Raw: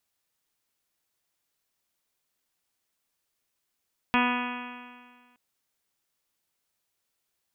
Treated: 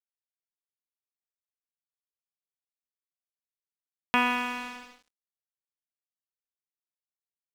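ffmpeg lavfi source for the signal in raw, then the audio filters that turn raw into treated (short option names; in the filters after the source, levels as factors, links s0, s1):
-f lavfi -i "aevalsrc='0.0668*pow(10,-3*t/1.72)*sin(2*PI*245.05*t)+0.0178*pow(10,-3*t/1.72)*sin(2*PI*490.39*t)+0.0299*pow(10,-3*t/1.72)*sin(2*PI*736.32*t)+0.0596*pow(10,-3*t/1.72)*sin(2*PI*983.13*t)+0.0335*pow(10,-3*t/1.72)*sin(2*PI*1231.11*t)+0.0266*pow(10,-3*t/1.72)*sin(2*PI*1480.55*t)+0.0299*pow(10,-3*t/1.72)*sin(2*PI*1731.73*t)+0.0188*pow(10,-3*t/1.72)*sin(2*PI*1984.93*t)+0.0211*pow(10,-3*t/1.72)*sin(2*PI*2240.44*t)+0.0422*pow(10,-3*t/1.72)*sin(2*PI*2498.52*t)+0.0224*pow(10,-3*t/1.72)*sin(2*PI*2759.45*t)+0.00794*pow(10,-3*t/1.72)*sin(2*PI*3023.49*t)+0.015*pow(10,-3*t/1.72)*sin(2*PI*3290.89*t)':d=1.22:s=44100"
-filter_complex "[0:a]highpass=f=260:p=1,asplit=2[s0][s1];[s1]acompressor=threshold=0.0178:ratio=6,volume=1[s2];[s0][s2]amix=inputs=2:normalize=0,aeval=exprs='sgn(val(0))*max(abs(val(0))-0.00891,0)':c=same"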